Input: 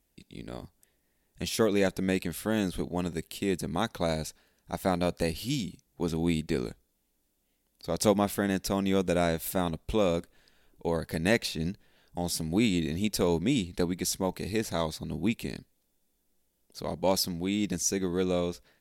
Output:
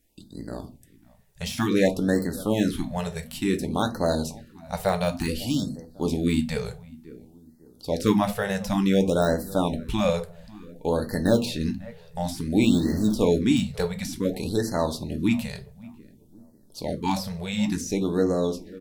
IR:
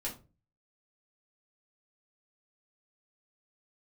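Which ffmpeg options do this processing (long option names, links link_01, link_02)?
-filter_complex "[0:a]asettb=1/sr,asplit=3[link_01][link_02][link_03];[link_01]atrim=end=12.664[link_04];[link_02]atrim=start=12.66:end=13.13,asetpts=PTS-STARTPTS,afade=type=in:duration=0.004:curve=qsin,afade=type=out:start_time=0.466:duration=0.004:curve=qsin,aeval=exprs='val(0)+0.5*0.015*sgn(val(0))':channel_layout=same[link_05];[link_03]atrim=start=13.126[link_06];[link_04][link_05]acrossfade=duration=0.004:curve1=hsin:curve2=qsin[link_07];[link_07][link_06]acrossfade=duration=0.004:curve1=qsin:curve2=hsin,deesser=0.75,asplit=2[link_08][link_09];[link_09]adelay=548,lowpass=frequency=1100:poles=1,volume=-19dB,asplit=2[link_10][link_11];[link_11]adelay=548,lowpass=frequency=1100:poles=1,volume=0.37,asplit=2[link_12][link_13];[link_13]adelay=548,lowpass=frequency=1100:poles=1,volume=0.37[link_14];[link_08][link_10][link_12][link_14]amix=inputs=4:normalize=0,asplit=2[link_15][link_16];[1:a]atrim=start_sample=2205[link_17];[link_16][link_17]afir=irnorm=-1:irlink=0,volume=-3dB[link_18];[link_15][link_18]amix=inputs=2:normalize=0,afftfilt=real='re*(1-between(b*sr/1024,270*pow(2900/270,0.5+0.5*sin(2*PI*0.56*pts/sr))/1.41,270*pow(2900/270,0.5+0.5*sin(2*PI*0.56*pts/sr))*1.41))':imag='im*(1-between(b*sr/1024,270*pow(2900/270,0.5+0.5*sin(2*PI*0.56*pts/sr))/1.41,270*pow(2900/270,0.5+0.5*sin(2*PI*0.56*pts/sr))*1.41))':win_size=1024:overlap=0.75,volume=1dB"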